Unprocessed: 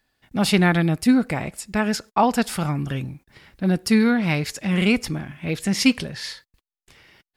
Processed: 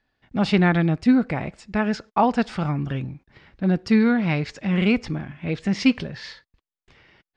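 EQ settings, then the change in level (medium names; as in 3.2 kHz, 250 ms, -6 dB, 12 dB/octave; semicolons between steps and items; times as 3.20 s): Chebyshev low-pass 9.4 kHz, order 5; distance through air 170 m; 0.0 dB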